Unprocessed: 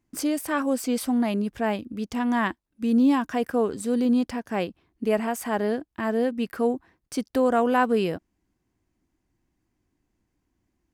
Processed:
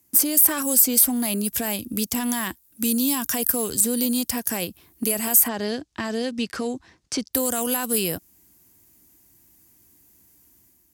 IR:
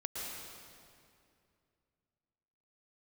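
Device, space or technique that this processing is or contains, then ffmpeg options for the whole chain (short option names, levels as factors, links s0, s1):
FM broadcast chain: -filter_complex "[0:a]highpass=53,dynaudnorm=f=110:g=7:m=2,acrossover=split=140|2900[s0][s1][s2];[s0]acompressor=threshold=0.00891:ratio=4[s3];[s1]acompressor=threshold=0.0316:ratio=4[s4];[s2]acompressor=threshold=0.00891:ratio=4[s5];[s3][s4][s5]amix=inputs=3:normalize=0,aemphasis=mode=production:type=50fm,alimiter=limit=0.1:level=0:latency=1:release=11,asoftclip=type=hard:threshold=0.0841,lowpass=f=15000:w=0.5412,lowpass=f=15000:w=1.3066,aemphasis=mode=production:type=50fm,asplit=3[s6][s7][s8];[s6]afade=t=out:st=5.47:d=0.02[s9];[s7]lowpass=f=6000:w=0.5412,lowpass=f=6000:w=1.3066,afade=t=in:st=5.47:d=0.02,afade=t=out:st=7.33:d=0.02[s10];[s8]afade=t=in:st=7.33:d=0.02[s11];[s9][s10][s11]amix=inputs=3:normalize=0,volume=1.58"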